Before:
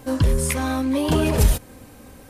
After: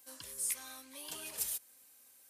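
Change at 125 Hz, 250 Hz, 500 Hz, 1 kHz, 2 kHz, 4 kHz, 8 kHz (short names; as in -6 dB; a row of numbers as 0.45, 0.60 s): under -40 dB, -37.5 dB, -32.0 dB, -26.5 dB, -20.0 dB, -14.5 dB, -7.5 dB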